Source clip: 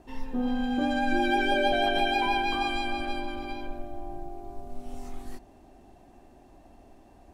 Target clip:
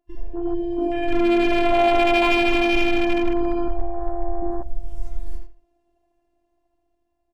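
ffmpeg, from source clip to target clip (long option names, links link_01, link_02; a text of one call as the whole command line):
ffmpeg -i in.wav -filter_complex "[0:a]asplit=2[link_01][link_02];[link_02]acompressor=threshold=-38dB:ratio=5,volume=-1dB[link_03];[link_01][link_03]amix=inputs=2:normalize=0,agate=range=-14dB:threshold=-37dB:ratio=16:detection=peak,asplit=2[link_04][link_05];[link_05]adelay=80,lowpass=frequency=4200:poles=1,volume=-4dB,asplit=2[link_06][link_07];[link_07]adelay=80,lowpass=frequency=4200:poles=1,volume=0.21,asplit=2[link_08][link_09];[link_09]adelay=80,lowpass=frequency=4200:poles=1,volume=0.21[link_10];[link_04][link_06][link_08][link_10]amix=inputs=4:normalize=0,afftfilt=real='hypot(re,im)*cos(PI*b)':imag='0':win_size=512:overlap=0.75,afwtdn=0.0158,dynaudnorm=framelen=460:gausssize=7:maxgain=7dB,asoftclip=type=hard:threshold=-16.5dB,adynamicequalizer=threshold=0.00794:dfrequency=4200:dqfactor=0.7:tfrequency=4200:tqfactor=0.7:attack=5:release=100:ratio=0.375:range=2:mode=cutabove:tftype=highshelf,volume=4.5dB" out.wav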